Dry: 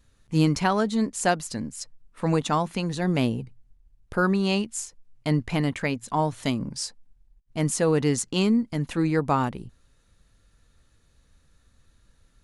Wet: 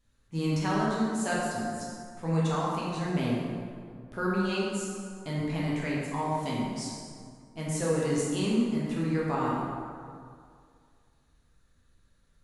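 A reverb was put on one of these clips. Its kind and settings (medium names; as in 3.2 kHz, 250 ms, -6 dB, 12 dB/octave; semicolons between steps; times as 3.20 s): plate-style reverb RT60 2.2 s, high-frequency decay 0.55×, DRR -6.5 dB; trim -12 dB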